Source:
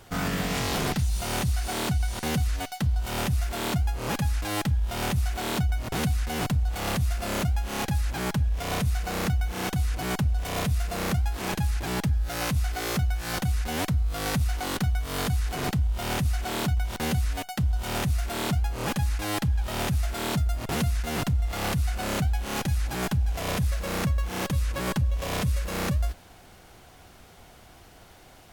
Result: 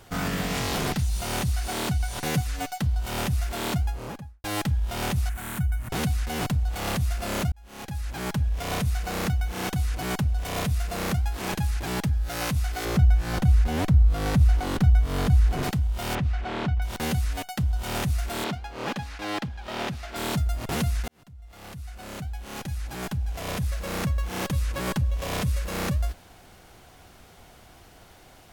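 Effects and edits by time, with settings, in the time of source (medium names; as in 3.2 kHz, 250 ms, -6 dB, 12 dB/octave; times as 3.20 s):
2.03–2.78 s: comb 6.9 ms, depth 60%
3.75–4.44 s: studio fade out
5.29–5.90 s: FFT filter 160 Hz 0 dB, 450 Hz -15 dB, 1.6 kHz -1 dB, 4.9 kHz -15 dB, 9.1 kHz +1 dB
7.52–8.43 s: fade in
12.85–15.63 s: tilt EQ -2 dB/octave
16.15–16.82 s: low-pass 2.8 kHz
18.44–20.16 s: three-band isolator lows -14 dB, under 170 Hz, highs -15 dB, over 5.4 kHz
21.08–24.34 s: fade in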